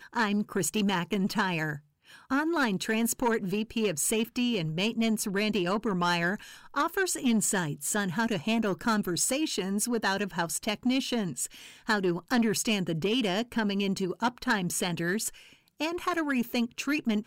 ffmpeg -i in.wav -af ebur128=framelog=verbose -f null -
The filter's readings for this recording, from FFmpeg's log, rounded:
Integrated loudness:
  I:         -28.7 LUFS
  Threshold: -38.9 LUFS
Loudness range:
  LRA:         1.7 LU
  Threshold: -48.8 LUFS
  LRA low:   -29.8 LUFS
  LRA high:  -28.1 LUFS